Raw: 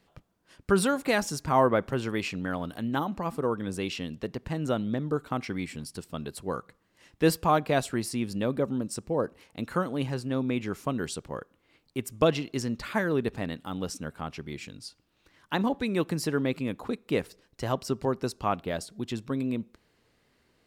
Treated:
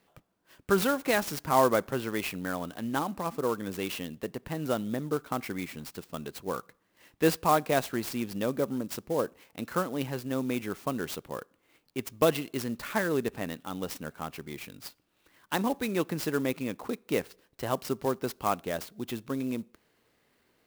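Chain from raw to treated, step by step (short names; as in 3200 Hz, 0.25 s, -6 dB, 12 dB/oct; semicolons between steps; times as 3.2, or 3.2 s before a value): low shelf 140 Hz -10 dB; clock jitter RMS 0.033 ms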